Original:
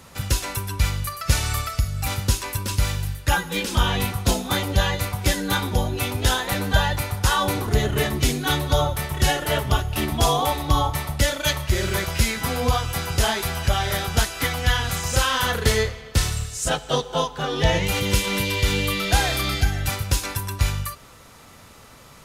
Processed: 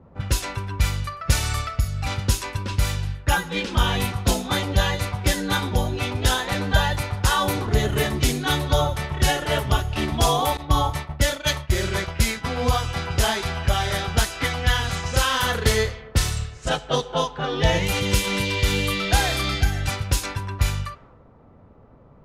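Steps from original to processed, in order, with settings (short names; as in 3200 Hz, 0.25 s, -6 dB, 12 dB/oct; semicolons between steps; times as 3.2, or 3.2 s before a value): 10.57–12.57 expander -22 dBFS; low-pass opened by the level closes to 560 Hz, open at -17.5 dBFS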